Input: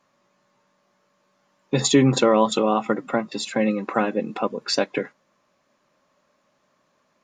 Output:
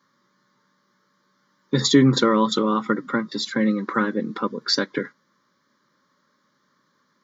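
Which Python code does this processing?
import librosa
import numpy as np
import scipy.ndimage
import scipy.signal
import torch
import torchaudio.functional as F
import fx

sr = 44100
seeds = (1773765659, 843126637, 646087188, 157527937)

y = scipy.signal.sosfilt(scipy.signal.butter(2, 130.0, 'highpass', fs=sr, output='sos'), x)
y = fx.fixed_phaser(y, sr, hz=2600.0, stages=6)
y = y * librosa.db_to_amplitude(4.0)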